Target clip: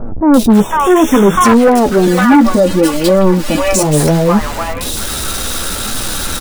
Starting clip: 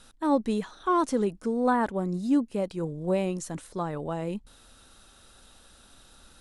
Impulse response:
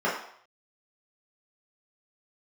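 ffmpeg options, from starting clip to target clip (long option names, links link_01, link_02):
-filter_complex "[0:a]aeval=exprs='val(0)+0.5*0.0224*sgn(val(0))':channel_layout=same,flanger=delay=8.1:depth=7.5:regen=31:speed=0.67:shape=triangular,acrossover=split=810|2700[link_01][link_02][link_03];[link_03]adelay=340[link_04];[link_02]adelay=500[link_05];[link_01][link_05][link_04]amix=inputs=3:normalize=0,aeval=exprs='0.224*sin(PI/2*3.16*val(0)/0.224)':channel_layout=same,asettb=1/sr,asplit=3[link_06][link_07][link_08];[link_06]atrim=end=0.604[link_09];[link_07]atrim=start=0.6:end=1.45,asetpts=PTS-STARTPTS,afade=type=in:duration=0.004:curve=qsin,afade=type=out:start_time=0.846:duration=0.004:curve=qsin,asuperstop=centerf=4400:order=20:qfactor=2.6[link_10];[link_08]atrim=start=1.446[link_11];[link_09][link_10]acrossfade=duration=0.004:curve1=hsin:curve2=qsin[link_12];[link_12][link_11]acrossfade=duration=0.004:curve1=qsin:curve2=hsin,asettb=1/sr,asplit=3[link_13][link_14][link_15];[link_13]atrim=end=2.074[link_16];[link_14]atrim=start=2.07:end=3.83,asetpts=PTS-STARTPTS,afade=type=in:duration=0.004:curve=qsin,afade=type=out:start_time=1.756:duration=0.004:curve=qsin,aecho=1:1:3.5:0.95,atrim=end_sample=77616[link_17];[link_15]atrim=start=3.826[link_18];[link_16][link_17]acrossfade=duration=0.004:curve1=hsin:curve2=qsin[link_19];[link_19][link_18]acrossfade=duration=0.004:curve1=qsin:curve2=hsin,alimiter=level_in=11dB:limit=-1dB:release=50:level=0:latency=1,volume=-1dB"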